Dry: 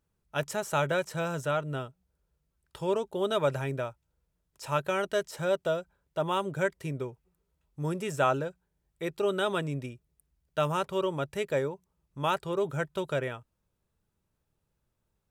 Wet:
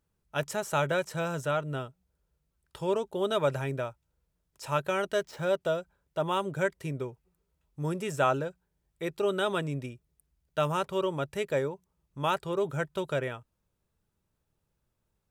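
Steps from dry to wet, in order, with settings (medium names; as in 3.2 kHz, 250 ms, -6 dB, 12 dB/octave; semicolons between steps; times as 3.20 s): 5.20–5.61 s: median filter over 5 samples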